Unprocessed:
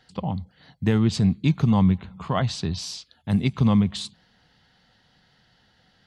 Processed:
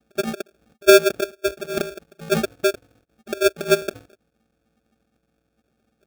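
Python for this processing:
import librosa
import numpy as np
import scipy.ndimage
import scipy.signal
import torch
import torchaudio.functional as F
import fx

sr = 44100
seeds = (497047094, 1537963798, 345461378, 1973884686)

y = fx.sine_speech(x, sr)
y = fx.low_shelf(y, sr, hz=360.0, db=9.5)
y = y + 0.91 * np.pad(y, (int(2.6 * sr / 1000.0), 0))[:len(y)]
y = fx.vocoder(y, sr, bands=8, carrier='saw', carrier_hz=388.0)
y = fx.sample_hold(y, sr, seeds[0], rate_hz=1000.0, jitter_pct=0)
y = y * 10.0 ** (3.5 / 20.0)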